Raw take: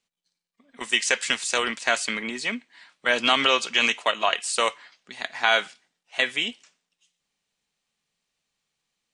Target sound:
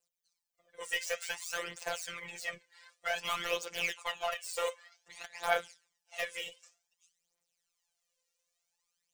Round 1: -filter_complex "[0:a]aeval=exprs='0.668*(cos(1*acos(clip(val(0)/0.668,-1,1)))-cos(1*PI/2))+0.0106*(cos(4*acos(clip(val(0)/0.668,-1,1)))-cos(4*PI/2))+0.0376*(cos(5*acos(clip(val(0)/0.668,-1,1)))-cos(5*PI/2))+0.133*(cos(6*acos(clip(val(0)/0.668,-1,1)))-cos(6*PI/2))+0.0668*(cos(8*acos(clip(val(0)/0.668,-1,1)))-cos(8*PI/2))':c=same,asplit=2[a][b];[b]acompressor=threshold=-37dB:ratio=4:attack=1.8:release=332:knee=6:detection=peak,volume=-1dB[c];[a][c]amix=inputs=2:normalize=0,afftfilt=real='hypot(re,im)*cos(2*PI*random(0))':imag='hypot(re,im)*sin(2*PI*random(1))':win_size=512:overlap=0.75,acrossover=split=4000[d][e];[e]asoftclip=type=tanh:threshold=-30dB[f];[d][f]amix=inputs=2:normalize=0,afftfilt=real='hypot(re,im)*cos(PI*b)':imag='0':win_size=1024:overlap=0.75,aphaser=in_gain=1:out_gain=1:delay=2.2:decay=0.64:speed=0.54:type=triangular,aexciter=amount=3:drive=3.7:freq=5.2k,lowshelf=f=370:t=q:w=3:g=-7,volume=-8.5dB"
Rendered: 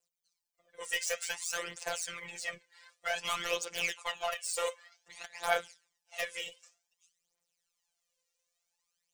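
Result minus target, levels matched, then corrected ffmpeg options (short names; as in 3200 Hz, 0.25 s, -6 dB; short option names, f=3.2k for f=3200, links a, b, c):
soft clip: distortion -8 dB
-filter_complex "[0:a]aeval=exprs='0.668*(cos(1*acos(clip(val(0)/0.668,-1,1)))-cos(1*PI/2))+0.0106*(cos(4*acos(clip(val(0)/0.668,-1,1)))-cos(4*PI/2))+0.0376*(cos(5*acos(clip(val(0)/0.668,-1,1)))-cos(5*PI/2))+0.133*(cos(6*acos(clip(val(0)/0.668,-1,1)))-cos(6*PI/2))+0.0668*(cos(8*acos(clip(val(0)/0.668,-1,1)))-cos(8*PI/2))':c=same,asplit=2[a][b];[b]acompressor=threshold=-37dB:ratio=4:attack=1.8:release=332:knee=6:detection=peak,volume=-1dB[c];[a][c]amix=inputs=2:normalize=0,afftfilt=real='hypot(re,im)*cos(2*PI*random(0))':imag='hypot(re,im)*sin(2*PI*random(1))':win_size=512:overlap=0.75,acrossover=split=4000[d][e];[e]asoftclip=type=tanh:threshold=-41dB[f];[d][f]amix=inputs=2:normalize=0,afftfilt=real='hypot(re,im)*cos(PI*b)':imag='0':win_size=1024:overlap=0.75,aphaser=in_gain=1:out_gain=1:delay=2.2:decay=0.64:speed=0.54:type=triangular,aexciter=amount=3:drive=3.7:freq=5.2k,lowshelf=f=370:t=q:w=3:g=-7,volume=-8.5dB"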